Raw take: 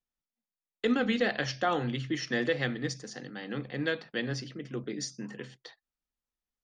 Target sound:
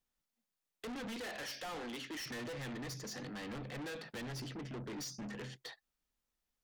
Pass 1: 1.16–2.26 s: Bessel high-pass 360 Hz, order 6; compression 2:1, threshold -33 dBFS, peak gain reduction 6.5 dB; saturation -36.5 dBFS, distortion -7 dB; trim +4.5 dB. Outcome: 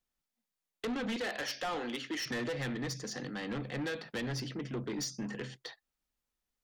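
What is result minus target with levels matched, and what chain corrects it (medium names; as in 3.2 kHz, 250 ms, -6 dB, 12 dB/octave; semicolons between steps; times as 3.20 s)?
saturation: distortion -5 dB
1.16–2.26 s: Bessel high-pass 360 Hz, order 6; compression 2:1, threshold -33 dBFS, peak gain reduction 6.5 dB; saturation -46 dBFS, distortion -3 dB; trim +4.5 dB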